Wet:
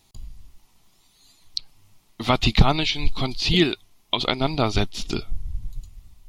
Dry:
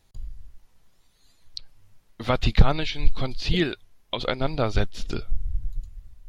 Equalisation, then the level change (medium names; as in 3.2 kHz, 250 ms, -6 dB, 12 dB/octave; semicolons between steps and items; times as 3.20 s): bass shelf 130 Hz -12 dB; peaking EQ 520 Hz -12 dB 0.47 oct; peaking EQ 1.6 kHz -11 dB 0.53 oct; +8.5 dB